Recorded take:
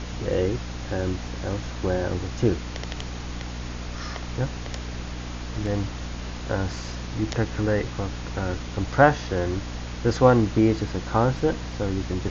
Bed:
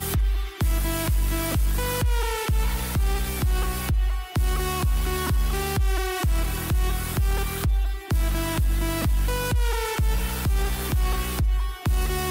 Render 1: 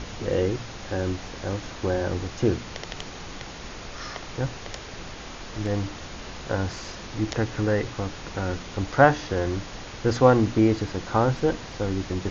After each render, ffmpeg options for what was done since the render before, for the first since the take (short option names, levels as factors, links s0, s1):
-af "bandreject=f=60:t=h:w=4,bandreject=f=120:t=h:w=4,bandreject=f=180:t=h:w=4,bandreject=f=240:t=h:w=4,bandreject=f=300:t=h:w=4"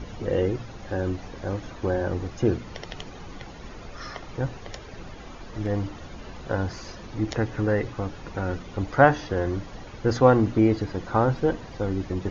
-af "afftdn=nr=11:nf=-39"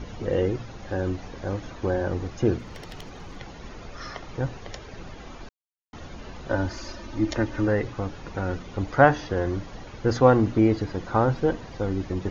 -filter_complex "[0:a]asettb=1/sr,asplit=3[s0][s1][s2];[s0]atrim=end=2.584[s3];[s1]atrim=start=2.58:end=3.37,asetpts=PTS-STARTPTS,afade=t=in:d=0.004:c=qsin,afade=t=out:st=0.786:d=0.004:c=qsin,volume=50.1,asoftclip=hard,volume=0.02[s4];[s2]atrim=start=3.366[s5];[s3][s4]acrossfade=d=0.004:c1=hsin:c2=qsin[s6];[s6][s5]acrossfade=d=0.004:c1=qsin:c2=hsin,asettb=1/sr,asplit=3[s7][s8][s9];[s7]atrim=end=6.494[s10];[s8]atrim=start=6.49:end=7.68,asetpts=PTS-STARTPTS,afade=t=in:d=0.004:c=qsin,afade=t=out:st=1.186:d=0.004:c=qsin,aecho=1:1:3.3:0.65,atrim=end_sample=52479[s11];[s9]atrim=start=7.676[s12];[s10][s11]acrossfade=d=0.004:c1=hsin:c2=qsin[s13];[s13][s12]acrossfade=d=0.004:c1=qsin:c2=hsin,asplit=3[s14][s15][s16];[s14]atrim=end=5.49,asetpts=PTS-STARTPTS,afade=t=out:st=5.486:d=0.004:c=hsin[s17];[s15]atrim=start=5.49:end=5.93,asetpts=PTS-STARTPTS,volume=0[s18];[s16]atrim=start=5.93,asetpts=PTS-STARTPTS,afade=t=in:d=0.004:c=hsin[s19];[s17][s18][s19]concat=n=3:v=0:a=1"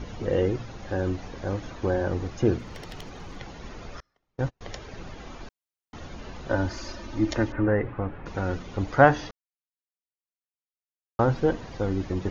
-filter_complex "[0:a]asettb=1/sr,asplit=3[s0][s1][s2];[s0]atrim=end=4.004[s3];[s1]atrim=start=4:end=4.61,asetpts=PTS-STARTPTS,afade=t=in:d=0.004:c=qsin,afade=t=out:st=0.606:d=0.004:c=qsin,agate=range=0.0112:threshold=0.0282:ratio=16:release=100:detection=peak[s4];[s2]atrim=start=4.606[s5];[s3][s4]acrossfade=d=0.004:c1=hsin:c2=qsin[s6];[s6][s5]acrossfade=d=0.004:c1=qsin:c2=hsin,asettb=1/sr,asplit=3[s7][s8][s9];[s7]atrim=end=7.524[s10];[s8]atrim=start=7.52:end=8.26,asetpts=PTS-STARTPTS,afade=t=in:d=0.004:c=qsin,afade=t=out:st=0.736:d=0.004:c=qsin,lowpass=f=2300:w=0.5412,lowpass=f=2300:w=1.3066[s11];[s9]atrim=start=8.256[s12];[s10][s11]acrossfade=d=0.004:c1=hsin:c2=qsin[s13];[s13][s12]acrossfade=d=0.004:c1=qsin:c2=hsin,asplit=3[s14][s15][s16];[s14]atrim=end=9.31,asetpts=PTS-STARTPTS,afade=t=out:st=9.306:d=0.004:c=hsin[s17];[s15]atrim=start=9.31:end=11.19,asetpts=PTS-STARTPTS,volume=0[s18];[s16]atrim=start=11.19,asetpts=PTS-STARTPTS,afade=t=in:d=0.004:c=hsin[s19];[s17][s18][s19]concat=n=3:v=0:a=1"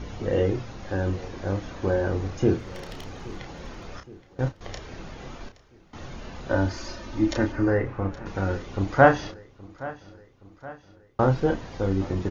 -filter_complex "[0:a]asplit=2[s0][s1];[s1]adelay=31,volume=0.473[s2];[s0][s2]amix=inputs=2:normalize=0,aecho=1:1:821|1642|2463|3284:0.112|0.0595|0.0315|0.0167"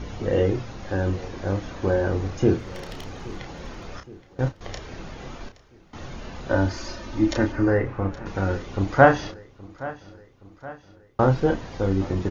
-af "volume=1.26,alimiter=limit=0.891:level=0:latency=1"